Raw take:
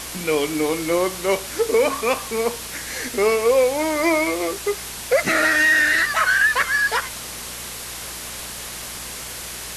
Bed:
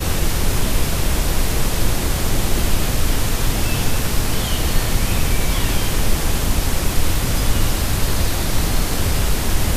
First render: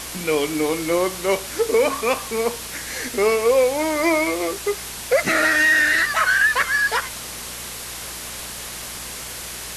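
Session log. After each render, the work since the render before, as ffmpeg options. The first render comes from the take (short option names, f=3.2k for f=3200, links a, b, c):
-af anull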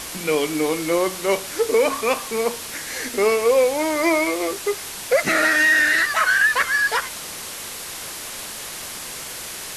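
-af "bandreject=f=60:t=h:w=4,bandreject=f=120:t=h:w=4,bandreject=f=180:t=h:w=4,bandreject=f=240:t=h:w=4"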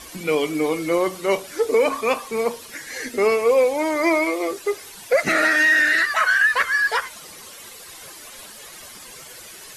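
-af "afftdn=nr=12:nf=-33"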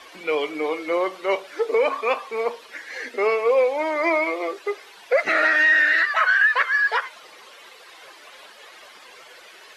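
-filter_complex "[0:a]acrossover=split=360 4200:gain=0.0794 1 0.112[a][b][c];[a][b][c]amix=inputs=3:normalize=0,bandreject=f=82.07:t=h:w=4,bandreject=f=164.14:t=h:w=4"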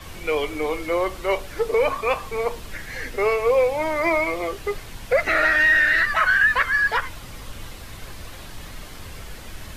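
-filter_complex "[1:a]volume=-20dB[a];[0:a][a]amix=inputs=2:normalize=0"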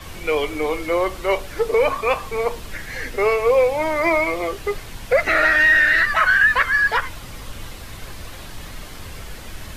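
-af "volume=2.5dB"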